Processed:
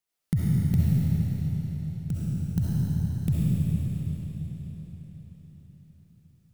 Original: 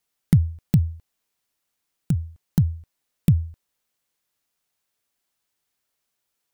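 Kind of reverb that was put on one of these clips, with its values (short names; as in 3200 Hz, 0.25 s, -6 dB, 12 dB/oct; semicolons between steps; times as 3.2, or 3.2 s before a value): digital reverb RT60 4.9 s, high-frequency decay 0.95×, pre-delay 25 ms, DRR -8.5 dB; gain -9.5 dB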